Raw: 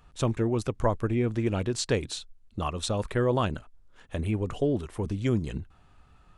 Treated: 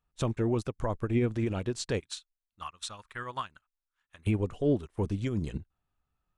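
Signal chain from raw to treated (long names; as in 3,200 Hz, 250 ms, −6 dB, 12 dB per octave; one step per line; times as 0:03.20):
0:02.00–0:04.27: low shelf with overshoot 790 Hz −13.5 dB, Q 1.5
brickwall limiter −23.5 dBFS, peak gain reduction 11 dB
expander for the loud parts 2.5 to 1, over −48 dBFS
level +6 dB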